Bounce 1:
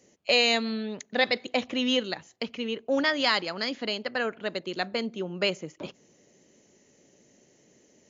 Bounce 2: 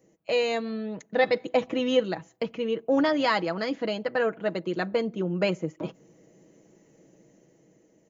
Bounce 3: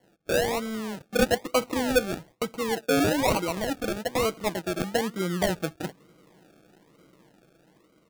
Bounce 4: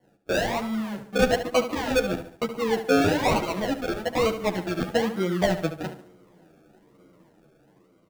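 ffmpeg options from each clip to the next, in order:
ffmpeg -i in.wav -af "equalizer=frequency=4400:width=0.47:gain=-14,aecho=1:1:6.2:0.54,dynaudnorm=framelen=230:gausssize=9:maxgain=5dB" out.wav
ffmpeg -i in.wav -af "acrusher=samples=35:mix=1:aa=0.000001:lfo=1:lforange=21:lforate=1.1" out.wav
ffmpeg -i in.wav -filter_complex "[0:a]aecho=1:1:72|144|216|288|360:0.299|0.137|0.0632|0.0291|0.0134,asplit=2[link_01][link_02];[link_02]adynamicsmooth=sensitivity=5.5:basefreq=1900,volume=0.5dB[link_03];[link_01][link_03]amix=inputs=2:normalize=0,asplit=2[link_04][link_05];[link_05]adelay=10.3,afreqshift=-1.2[link_06];[link_04][link_06]amix=inputs=2:normalize=1,volume=-1.5dB" out.wav

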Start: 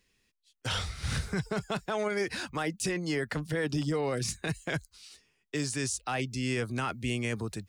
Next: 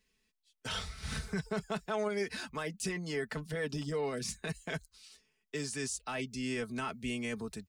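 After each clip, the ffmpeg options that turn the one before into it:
ffmpeg -i in.wav -af "aecho=1:1:4.6:0.59,volume=-6dB" out.wav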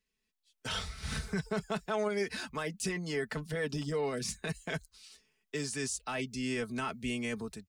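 ffmpeg -i in.wav -af "dynaudnorm=framelen=150:gausssize=5:maxgain=10.5dB,volume=-9dB" out.wav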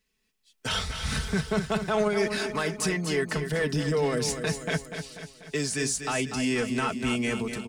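ffmpeg -i in.wav -filter_complex "[0:a]asplit=2[link_01][link_02];[link_02]asoftclip=type=tanh:threshold=-31.5dB,volume=-4.5dB[link_03];[link_01][link_03]amix=inputs=2:normalize=0,aecho=1:1:244|488|732|976|1220|1464:0.376|0.199|0.106|0.056|0.0297|0.0157,volume=4dB" out.wav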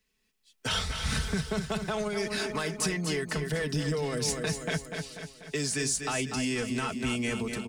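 ffmpeg -i in.wav -filter_complex "[0:a]acrossover=split=140|3000[link_01][link_02][link_03];[link_02]acompressor=threshold=-29dB:ratio=6[link_04];[link_01][link_04][link_03]amix=inputs=3:normalize=0" out.wav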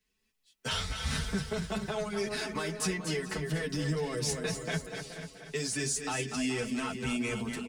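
ffmpeg -i in.wav -filter_complex "[0:a]asplit=2[link_01][link_02];[link_02]adelay=425.7,volume=-12dB,highshelf=frequency=4000:gain=-9.58[link_03];[link_01][link_03]amix=inputs=2:normalize=0,asplit=2[link_04][link_05];[link_05]adelay=9,afreqshift=2.5[link_06];[link_04][link_06]amix=inputs=2:normalize=1" out.wav

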